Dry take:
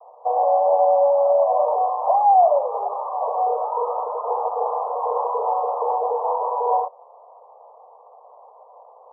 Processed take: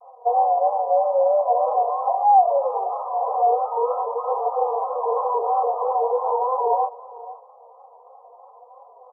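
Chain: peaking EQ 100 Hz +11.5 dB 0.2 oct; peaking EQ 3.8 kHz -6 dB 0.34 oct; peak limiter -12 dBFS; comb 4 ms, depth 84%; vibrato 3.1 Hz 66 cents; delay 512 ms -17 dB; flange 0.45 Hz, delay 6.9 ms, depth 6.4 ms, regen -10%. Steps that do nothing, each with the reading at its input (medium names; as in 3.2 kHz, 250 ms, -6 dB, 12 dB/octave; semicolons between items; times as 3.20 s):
peaking EQ 100 Hz: input has nothing below 380 Hz; peaking EQ 3.8 kHz: input has nothing above 1.3 kHz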